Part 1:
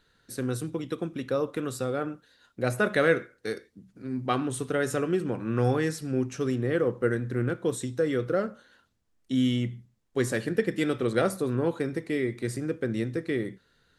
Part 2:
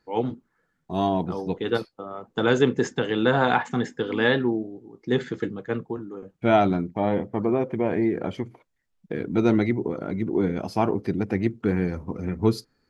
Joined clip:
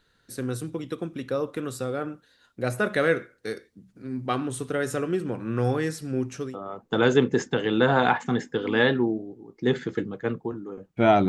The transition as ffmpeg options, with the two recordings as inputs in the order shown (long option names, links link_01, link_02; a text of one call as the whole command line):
ffmpeg -i cue0.wav -i cue1.wav -filter_complex "[0:a]apad=whole_dur=11.28,atrim=end=11.28,atrim=end=6.58,asetpts=PTS-STARTPTS[link_01];[1:a]atrim=start=1.81:end=6.73,asetpts=PTS-STARTPTS[link_02];[link_01][link_02]acrossfade=duration=0.22:curve1=tri:curve2=tri" out.wav